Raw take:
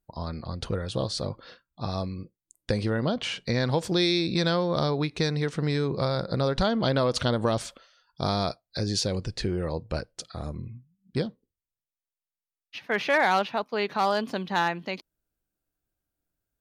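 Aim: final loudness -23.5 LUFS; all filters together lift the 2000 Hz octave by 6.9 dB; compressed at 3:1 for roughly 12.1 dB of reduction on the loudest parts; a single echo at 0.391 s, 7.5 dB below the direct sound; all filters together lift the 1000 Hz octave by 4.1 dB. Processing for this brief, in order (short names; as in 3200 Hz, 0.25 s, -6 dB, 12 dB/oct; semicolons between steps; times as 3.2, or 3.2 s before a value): bell 1000 Hz +3.5 dB; bell 2000 Hz +7.5 dB; compressor 3:1, threshold -30 dBFS; echo 0.391 s -7.5 dB; gain +9 dB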